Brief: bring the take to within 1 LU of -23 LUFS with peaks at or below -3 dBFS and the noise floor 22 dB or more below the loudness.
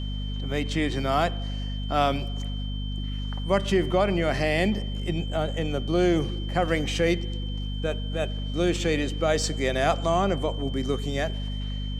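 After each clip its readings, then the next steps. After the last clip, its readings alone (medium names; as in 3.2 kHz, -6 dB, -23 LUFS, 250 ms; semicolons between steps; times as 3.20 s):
hum 50 Hz; highest harmonic 250 Hz; hum level -28 dBFS; steady tone 3.1 kHz; tone level -40 dBFS; loudness -26.5 LUFS; peak level -8.5 dBFS; loudness target -23.0 LUFS
-> hum notches 50/100/150/200/250 Hz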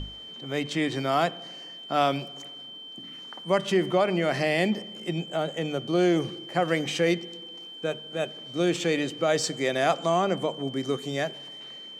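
hum not found; steady tone 3.1 kHz; tone level -40 dBFS
-> band-stop 3.1 kHz, Q 30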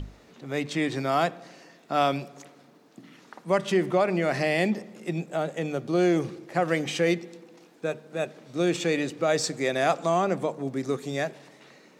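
steady tone not found; loudness -27.0 LUFS; peak level -10.5 dBFS; loudness target -23.0 LUFS
-> trim +4 dB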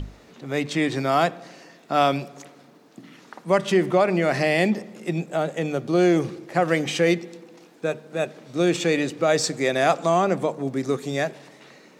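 loudness -23.0 LUFS; peak level -6.5 dBFS; noise floor -52 dBFS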